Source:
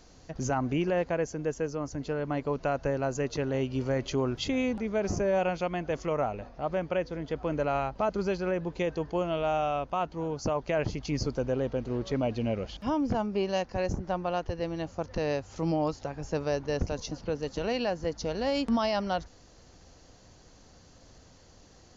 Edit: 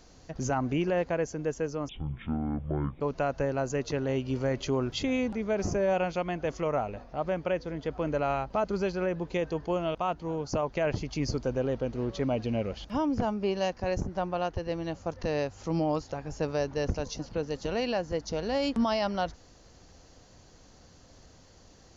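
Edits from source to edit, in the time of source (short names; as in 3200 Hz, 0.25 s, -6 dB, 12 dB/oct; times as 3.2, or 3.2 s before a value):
1.89–2.46 speed 51%
9.4–9.87 cut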